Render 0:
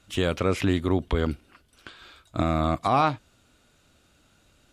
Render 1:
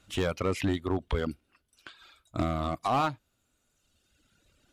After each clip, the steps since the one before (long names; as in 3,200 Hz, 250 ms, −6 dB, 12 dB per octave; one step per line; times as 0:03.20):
reverb reduction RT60 1.6 s
gain into a clipping stage and back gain 18 dB
level −2.5 dB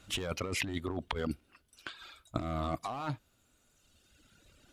compressor whose output falls as the input rises −34 dBFS, ratio −1
level −1 dB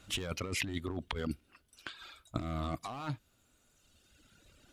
dynamic equaliser 730 Hz, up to −5 dB, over −50 dBFS, Q 0.73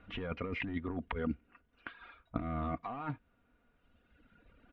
low-pass filter 2,300 Hz 24 dB per octave
comb filter 4.2 ms, depth 43%